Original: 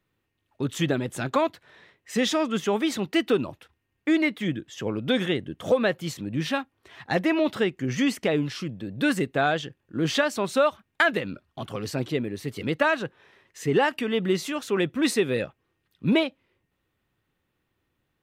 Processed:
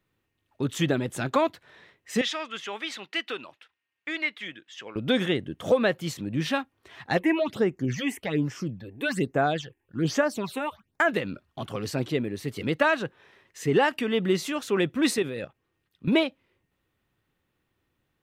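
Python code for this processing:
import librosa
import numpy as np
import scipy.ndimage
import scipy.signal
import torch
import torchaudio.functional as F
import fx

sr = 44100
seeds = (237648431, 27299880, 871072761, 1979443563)

y = fx.bandpass_q(x, sr, hz=2500.0, q=0.83, at=(2.21, 4.96))
y = fx.phaser_stages(y, sr, stages=8, low_hz=160.0, high_hz=4000.0, hz=1.2, feedback_pct=25, at=(7.17, 11.08), fade=0.02)
y = fx.level_steps(y, sr, step_db=11, at=(15.16, 16.12), fade=0.02)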